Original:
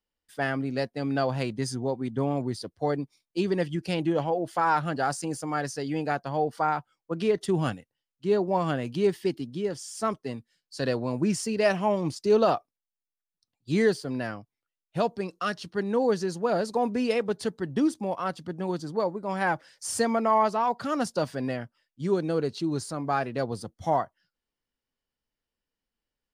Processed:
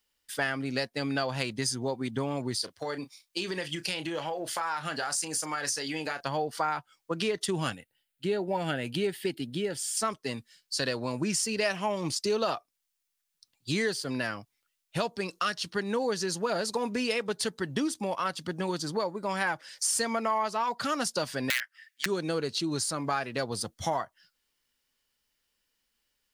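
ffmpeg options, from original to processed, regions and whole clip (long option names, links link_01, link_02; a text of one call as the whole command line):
ffmpeg -i in.wav -filter_complex "[0:a]asettb=1/sr,asplit=3[link_01][link_02][link_03];[link_01]atrim=end=2.554[link_04];[link_02]atrim=start=2.55:end=6.21,asetpts=PTS-STARTPTS,afade=type=in:duration=0.004:curve=qsin,afade=type=out:start_time=3.656:duration=0.004:curve=qsin,lowshelf=frequency=370:gain=-8.5,acompressor=threshold=-33dB:ratio=4:attack=3.2:release=140:knee=1:detection=peak,asplit=2[link_05][link_06];[link_06]adelay=32,volume=-11.5dB[link_07];[link_05][link_07]amix=inputs=2:normalize=0,atrim=end_sample=161406[link_08];[link_03]atrim=start=6.206[link_09];[link_04][link_08]acrossfade=duration=0.004:curve1=hsin:curve2=qsin[link_10];[link_10][link_09]acrossfade=duration=0.004:curve1=qsin:curve2=hsin,asettb=1/sr,asplit=3[link_11][link_12][link_13];[link_11]atrim=end=7.754[link_14];[link_12]atrim=start=7.75:end=9.97,asetpts=PTS-STARTPTS,afade=type=in:duration=0.004:curve=qsin,afade=type=out:start_time=2.216:duration=0.004:curve=qsin,asuperstop=centerf=1100:order=4:qfactor=3.6,equalizer=frequency=5800:width=1.8:gain=-11[link_15];[link_13]atrim=start=9.966[link_16];[link_14][link_15]acrossfade=duration=0.004:curve1=hsin:curve2=qsin[link_17];[link_17][link_16]acrossfade=duration=0.004:curve1=qsin:curve2=hsin,asettb=1/sr,asplit=3[link_18][link_19][link_20];[link_18]atrim=end=21.504[link_21];[link_19]atrim=start=21.5:end=22.06,asetpts=PTS-STARTPTS,afade=type=in:duration=0.004:curve=qsin,afade=type=out:start_time=0.556:duration=0.004:curve=qsin,aeval=exprs='(mod(15.8*val(0)+1,2)-1)/15.8':channel_layout=same,highpass=frequency=1800:width_type=q:width=6.5[link_22];[link_20]atrim=start=22.056[link_23];[link_21][link_22]acrossfade=duration=0.004:curve1=hsin:curve2=qsin[link_24];[link_24][link_23]acrossfade=duration=0.004:curve1=qsin:curve2=hsin,tiltshelf=frequency=1200:gain=-6.5,bandreject=frequency=730:width=16,acompressor=threshold=-37dB:ratio=3,volume=8dB" out.wav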